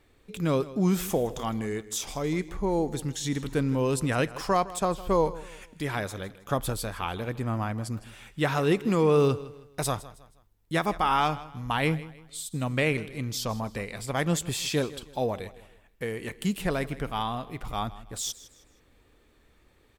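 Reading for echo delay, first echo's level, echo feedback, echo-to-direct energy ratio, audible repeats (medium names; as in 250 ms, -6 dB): 159 ms, -17.5 dB, 35%, -17.0 dB, 2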